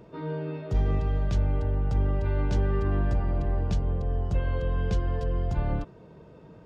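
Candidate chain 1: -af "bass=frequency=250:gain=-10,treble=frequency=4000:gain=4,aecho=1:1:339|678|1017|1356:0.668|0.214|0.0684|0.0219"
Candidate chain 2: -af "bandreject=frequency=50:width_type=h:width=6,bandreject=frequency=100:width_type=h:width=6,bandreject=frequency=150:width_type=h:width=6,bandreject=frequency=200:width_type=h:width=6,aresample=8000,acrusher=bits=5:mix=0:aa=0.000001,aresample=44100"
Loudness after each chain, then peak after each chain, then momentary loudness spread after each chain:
−33.5, −30.5 LKFS; −19.0, −17.0 dBFS; 6, 4 LU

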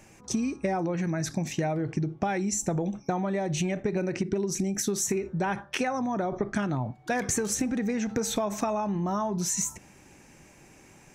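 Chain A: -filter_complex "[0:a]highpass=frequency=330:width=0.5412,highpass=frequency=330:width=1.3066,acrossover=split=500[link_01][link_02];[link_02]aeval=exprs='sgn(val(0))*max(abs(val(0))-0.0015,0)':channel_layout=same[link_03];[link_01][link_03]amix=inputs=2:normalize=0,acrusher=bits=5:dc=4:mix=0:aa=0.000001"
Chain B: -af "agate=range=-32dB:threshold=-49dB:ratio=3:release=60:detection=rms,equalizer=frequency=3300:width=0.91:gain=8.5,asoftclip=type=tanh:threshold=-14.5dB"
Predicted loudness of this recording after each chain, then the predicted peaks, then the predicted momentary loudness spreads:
−32.5, −28.5 LKFS; −14.5, −15.0 dBFS; 10, 4 LU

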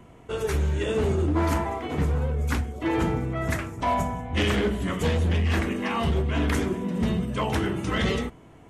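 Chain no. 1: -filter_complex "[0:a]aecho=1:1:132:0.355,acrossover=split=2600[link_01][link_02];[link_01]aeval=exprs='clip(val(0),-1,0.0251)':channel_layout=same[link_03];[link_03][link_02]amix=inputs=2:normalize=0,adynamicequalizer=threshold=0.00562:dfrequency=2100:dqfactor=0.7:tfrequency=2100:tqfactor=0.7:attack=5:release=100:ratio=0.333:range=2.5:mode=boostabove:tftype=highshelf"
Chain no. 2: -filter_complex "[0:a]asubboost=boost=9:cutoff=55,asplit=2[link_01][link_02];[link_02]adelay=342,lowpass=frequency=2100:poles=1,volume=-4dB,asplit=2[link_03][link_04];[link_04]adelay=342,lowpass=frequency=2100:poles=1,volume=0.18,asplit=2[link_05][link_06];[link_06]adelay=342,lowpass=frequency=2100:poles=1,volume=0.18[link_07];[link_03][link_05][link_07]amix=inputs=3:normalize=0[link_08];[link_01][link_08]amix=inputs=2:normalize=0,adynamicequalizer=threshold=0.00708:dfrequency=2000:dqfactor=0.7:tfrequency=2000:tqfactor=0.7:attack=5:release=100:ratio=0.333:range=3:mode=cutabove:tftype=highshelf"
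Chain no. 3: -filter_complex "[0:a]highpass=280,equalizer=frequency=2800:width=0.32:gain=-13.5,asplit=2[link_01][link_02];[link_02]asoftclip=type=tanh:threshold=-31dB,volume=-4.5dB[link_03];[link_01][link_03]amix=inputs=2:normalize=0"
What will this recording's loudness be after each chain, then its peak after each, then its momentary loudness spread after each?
−27.5, −22.0, −31.0 LKFS; −12.5, −6.0, −18.5 dBFS; 4, 8, 6 LU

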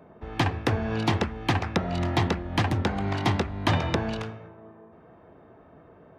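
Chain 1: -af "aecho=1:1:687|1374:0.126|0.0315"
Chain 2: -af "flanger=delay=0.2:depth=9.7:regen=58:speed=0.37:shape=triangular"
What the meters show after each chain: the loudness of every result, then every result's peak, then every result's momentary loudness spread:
−27.0, −31.5 LKFS; −9.0, −13.0 dBFS; 13, 5 LU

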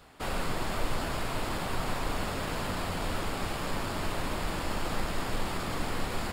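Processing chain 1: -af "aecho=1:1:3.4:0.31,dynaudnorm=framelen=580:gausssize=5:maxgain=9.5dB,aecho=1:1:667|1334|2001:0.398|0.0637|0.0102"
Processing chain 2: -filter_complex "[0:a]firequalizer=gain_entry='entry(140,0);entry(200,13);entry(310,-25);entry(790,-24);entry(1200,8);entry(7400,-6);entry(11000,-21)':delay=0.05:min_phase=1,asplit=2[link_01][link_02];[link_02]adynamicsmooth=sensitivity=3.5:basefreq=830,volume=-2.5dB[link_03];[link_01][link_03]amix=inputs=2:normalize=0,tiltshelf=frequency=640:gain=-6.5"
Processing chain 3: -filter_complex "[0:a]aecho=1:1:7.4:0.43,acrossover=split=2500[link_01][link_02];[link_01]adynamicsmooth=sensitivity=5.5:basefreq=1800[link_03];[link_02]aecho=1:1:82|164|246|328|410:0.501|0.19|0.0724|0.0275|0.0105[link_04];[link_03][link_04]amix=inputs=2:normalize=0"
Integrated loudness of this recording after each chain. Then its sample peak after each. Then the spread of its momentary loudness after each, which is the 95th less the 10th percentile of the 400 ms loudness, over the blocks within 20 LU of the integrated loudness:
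−25.0, −25.5, −33.5 LKFS; −8.0, −11.0, −14.5 dBFS; 8, 1, 1 LU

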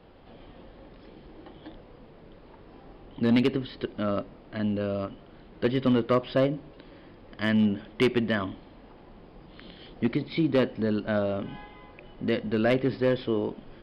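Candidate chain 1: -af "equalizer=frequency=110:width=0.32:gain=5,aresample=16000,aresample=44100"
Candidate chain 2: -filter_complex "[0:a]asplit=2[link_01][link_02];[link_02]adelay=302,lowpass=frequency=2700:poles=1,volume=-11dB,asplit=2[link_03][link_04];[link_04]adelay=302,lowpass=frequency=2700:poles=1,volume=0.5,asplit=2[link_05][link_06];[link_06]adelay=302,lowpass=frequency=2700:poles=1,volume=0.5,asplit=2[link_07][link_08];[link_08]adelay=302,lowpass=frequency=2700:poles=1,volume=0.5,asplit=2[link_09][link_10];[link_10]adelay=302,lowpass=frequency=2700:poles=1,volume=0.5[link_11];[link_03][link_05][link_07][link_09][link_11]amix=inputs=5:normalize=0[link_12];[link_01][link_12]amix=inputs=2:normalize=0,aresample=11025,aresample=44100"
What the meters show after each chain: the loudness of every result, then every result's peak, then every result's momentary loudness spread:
−24.5, −27.5 LKFS; −11.5, −13.5 dBFS; 13, 18 LU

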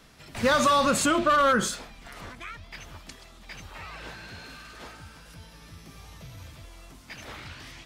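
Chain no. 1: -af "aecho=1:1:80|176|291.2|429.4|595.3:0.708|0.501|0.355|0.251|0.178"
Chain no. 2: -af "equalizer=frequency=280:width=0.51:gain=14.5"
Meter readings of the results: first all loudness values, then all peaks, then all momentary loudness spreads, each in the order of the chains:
−20.5, −15.0 LKFS; −7.0, −1.5 dBFS; 21, 5 LU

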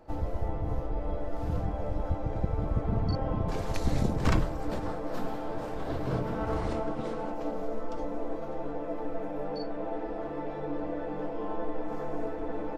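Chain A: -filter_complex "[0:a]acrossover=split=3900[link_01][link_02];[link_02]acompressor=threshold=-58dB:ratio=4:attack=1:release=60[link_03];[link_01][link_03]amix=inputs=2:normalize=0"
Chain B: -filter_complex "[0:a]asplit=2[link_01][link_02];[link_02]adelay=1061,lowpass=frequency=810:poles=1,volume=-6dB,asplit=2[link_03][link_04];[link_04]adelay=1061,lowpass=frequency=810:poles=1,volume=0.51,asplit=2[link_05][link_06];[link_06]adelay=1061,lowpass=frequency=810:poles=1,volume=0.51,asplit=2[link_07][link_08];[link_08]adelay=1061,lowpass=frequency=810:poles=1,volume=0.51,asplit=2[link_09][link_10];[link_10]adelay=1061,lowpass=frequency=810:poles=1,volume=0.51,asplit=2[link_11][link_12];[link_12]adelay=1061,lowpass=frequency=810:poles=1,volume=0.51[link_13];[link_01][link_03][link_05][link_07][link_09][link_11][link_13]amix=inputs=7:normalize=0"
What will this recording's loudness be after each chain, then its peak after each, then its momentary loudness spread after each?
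−34.0, −33.0 LKFS; −11.0, −11.0 dBFS; 6, 6 LU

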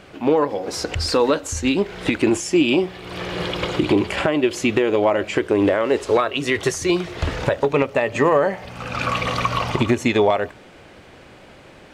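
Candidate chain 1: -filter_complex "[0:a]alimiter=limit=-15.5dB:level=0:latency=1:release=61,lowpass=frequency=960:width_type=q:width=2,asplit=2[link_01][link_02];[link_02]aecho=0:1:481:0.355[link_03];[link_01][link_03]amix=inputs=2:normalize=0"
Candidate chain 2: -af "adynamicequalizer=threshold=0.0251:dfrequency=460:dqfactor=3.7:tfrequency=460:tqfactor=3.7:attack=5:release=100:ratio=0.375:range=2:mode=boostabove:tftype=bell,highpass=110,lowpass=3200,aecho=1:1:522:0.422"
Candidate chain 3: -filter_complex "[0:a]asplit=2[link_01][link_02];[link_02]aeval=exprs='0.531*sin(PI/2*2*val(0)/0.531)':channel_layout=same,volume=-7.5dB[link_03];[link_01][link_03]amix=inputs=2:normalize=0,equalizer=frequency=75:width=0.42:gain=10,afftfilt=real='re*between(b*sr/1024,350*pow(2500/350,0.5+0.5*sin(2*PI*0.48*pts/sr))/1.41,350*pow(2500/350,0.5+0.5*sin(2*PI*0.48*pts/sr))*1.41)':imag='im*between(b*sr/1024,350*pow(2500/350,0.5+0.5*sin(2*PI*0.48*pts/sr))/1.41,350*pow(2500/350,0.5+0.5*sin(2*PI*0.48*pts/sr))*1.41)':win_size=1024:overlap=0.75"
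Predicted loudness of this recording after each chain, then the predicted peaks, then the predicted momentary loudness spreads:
−24.5, −19.0, −18.0 LKFS; −10.0, −2.5, −1.5 dBFS; 7, 7, 18 LU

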